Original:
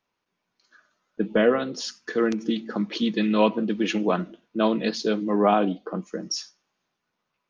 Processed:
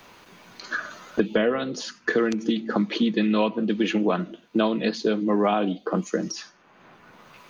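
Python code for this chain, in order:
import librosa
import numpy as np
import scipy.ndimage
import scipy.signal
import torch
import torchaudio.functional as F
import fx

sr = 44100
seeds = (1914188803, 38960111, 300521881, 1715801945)

y = fx.notch(x, sr, hz=5400.0, q=12.0)
y = fx.band_squash(y, sr, depth_pct=100)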